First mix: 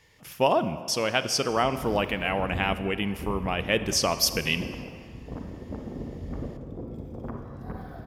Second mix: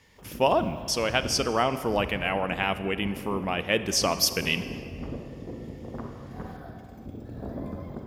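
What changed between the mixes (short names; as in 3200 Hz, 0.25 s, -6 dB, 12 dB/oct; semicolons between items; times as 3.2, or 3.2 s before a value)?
background: entry -1.30 s; master: add low shelf 73 Hz -6 dB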